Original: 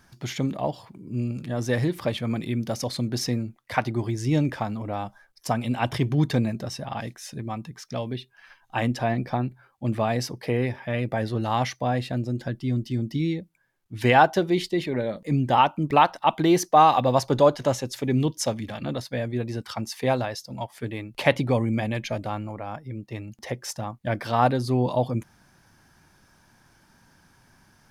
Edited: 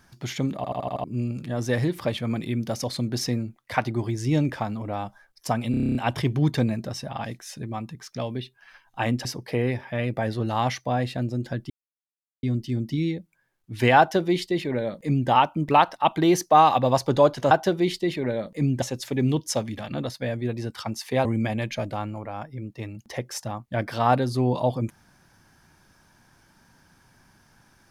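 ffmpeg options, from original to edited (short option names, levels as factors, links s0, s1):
-filter_complex "[0:a]asplit=20[s0][s1][s2][s3][s4][s5][s6][s7][s8][s9][s10][s11][s12][s13][s14][s15][s16][s17][s18][s19];[s0]atrim=end=0.642[s20];[s1]atrim=start=0.558:end=0.642[s21];[s2]atrim=start=0.558:end=0.642[s22];[s3]atrim=start=0.558:end=0.642[s23];[s4]atrim=start=0.558:end=0.642[s24];[s5]atrim=start=0.558:end=0.642[s25];[s6]atrim=start=1.038:end=5.742[s26];[s7]atrim=start=5.708:end=5.742[s27];[s8]atrim=start=5.708:end=5.742[s28];[s9]atrim=start=5.708:end=5.742[s29];[s10]atrim=start=5.708:end=5.742[s30];[s11]atrim=start=5.708:end=5.742[s31];[s12]atrim=start=5.708:end=5.742[s32];[s13]atrim=start=5.708:end=5.742[s33];[s14]atrim=start=5.708:end=9.012[s34];[s15]atrim=start=10.198:end=12.65,asetpts=PTS-STARTPTS,afade=t=out:st=2.448:d=0.004:c=hsin,apad=pad_dur=0.73[s35];[s16]atrim=start=12.65:end=17.732,asetpts=PTS-STARTPTS,afade=t=in:d=0.004:c=hsin[s36];[s17]atrim=start=14.208:end=15.522[s37];[s18]atrim=start=17.728:end=20.162[s38];[s19]atrim=start=21.578[s39];[s20][s21]acrossfade=d=0.004:c1=hsin:c2=hsin[s40];[s40][s22]acrossfade=d=0.004:c1=hsin:c2=hsin[s41];[s41][s23]acrossfade=d=0.004:c1=hsin:c2=hsin[s42];[s42][s24]acrossfade=d=0.004:c1=hsin:c2=hsin[s43];[s43][s25]acrossfade=d=0.004:c1=hsin:c2=hsin[s44];[s44][s26]acrossfade=d=0.004:c1=hsin:c2=hsin[s45];[s45][s27]acrossfade=d=0.004:c1=hsin:c2=hsin[s46];[s46][s28]acrossfade=d=0.004:c1=hsin:c2=hsin[s47];[s47][s29]acrossfade=d=0.004:c1=hsin:c2=hsin[s48];[s48][s30]acrossfade=d=0.004:c1=hsin:c2=hsin[s49];[s49][s31]acrossfade=d=0.004:c1=hsin:c2=hsin[s50];[s50][s32]acrossfade=d=0.004:c1=hsin:c2=hsin[s51];[s51][s33]acrossfade=d=0.004:c1=hsin:c2=hsin[s52];[s52][s34]acrossfade=d=0.004:c1=hsin:c2=hsin[s53];[s35][s36]concat=n=2:v=0:a=1[s54];[s53][s54]acrossfade=d=0.004:c1=hsin:c2=hsin[s55];[s55][s37]acrossfade=d=0.004:c1=hsin:c2=hsin[s56];[s56][s38]acrossfade=d=0.004:c1=hsin:c2=hsin[s57];[s57][s39]acrossfade=d=0.004:c1=hsin:c2=hsin"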